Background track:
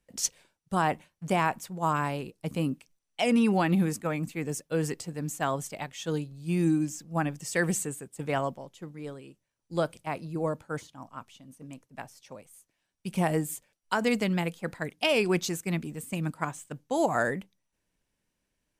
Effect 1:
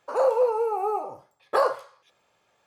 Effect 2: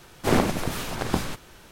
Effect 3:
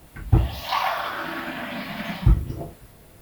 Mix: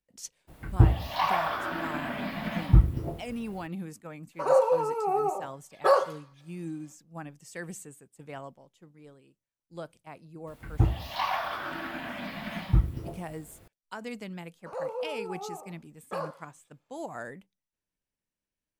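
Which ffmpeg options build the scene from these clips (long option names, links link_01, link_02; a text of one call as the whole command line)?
ffmpeg -i bed.wav -i cue0.wav -i cue1.wav -i cue2.wav -filter_complex "[3:a]asplit=2[link_01][link_02];[1:a]asplit=2[link_03][link_04];[0:a]volume=-12.5dB[link_05];[link_01]highshelf=frequency=2100:gain=-7.5[link_06];[link_03]aecho=1:1:5.3:0.72[link_07];[link_02]highshelf=frequency=5900:gain=-5[link_08];[link_06]atrim=end=3.21,asetpts=PTS-STARTPTS,volume=-1dB,afade=type=in:duration=0.02,afade=type=out:start_time=3.19:duration=0.02,adelay=470[link_09];[link_07]atrim=end=2.66,asetpts=PTS-STARTPTS,volume=-2dB,afade=type=in:duration=0.05,afade=type=out:start_time=2.61:duration=0.05,adelay=4310[link_10];[link_08]atrim=end=3.21,asetpts=PTS-STARTPTS,volume=-5.5dB,afade=type=in:duration=0.004:curve=hsin,afade=type=out:start_time=3.206:duration=0.004:curve=hsin,adelay=10470[link_11];[link_04]atrim=end=2.66,asetpts=PTS-STARTPTS,volume=-13dB,afade=type=in:duration=0.004:curve=hsin,afade=type=out:start_time=2.656:duration=0.004:curve=hsin,adelay=14580[link_12];[link_05][link_09][link_10][link_11][link_12]amix=inputs=5:normalize=0" out.wav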